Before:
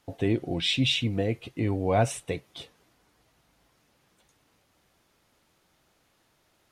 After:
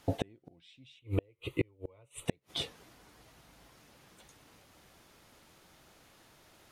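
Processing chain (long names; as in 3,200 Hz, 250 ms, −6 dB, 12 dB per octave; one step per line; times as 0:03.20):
0:00.99–0:02.26: phaser with its sweep stopped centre 1,100 Hz, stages 8
gate with flip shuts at −23 dBFS, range −40 dB
level +7 dB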